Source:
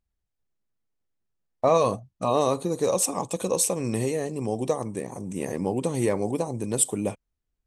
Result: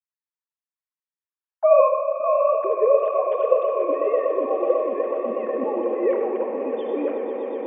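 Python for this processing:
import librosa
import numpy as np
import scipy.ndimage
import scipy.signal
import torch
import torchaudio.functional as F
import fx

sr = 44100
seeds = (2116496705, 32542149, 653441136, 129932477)

p1 = fx.sine_speech(x, sr)
p2 = scipy.signal.sosfilt(scipy.signal.butter(2, 2400.0, 'lowpass', fs=sr, output='sos'), p1)
p3 = fx.rev_freeverb(p2, sr, rt60_s=1.1, hf_ratio=0.65, predelay_ms=30, drr_db=4.0)
p4 = fx.dynamic_eq(p3, sr, hz=620.0, q=2.8, threshold_db=-30.0, ratio=4.0, max_db=3)
p5 = p4 + fx.echo_swell(p4, sr, ms=123, loudest=8, wet_db=-12.5, dry=0)
y = fx.wow_flutter(p5, sr, seeds[0], rate_hz=2.1, depth_cents=25.0)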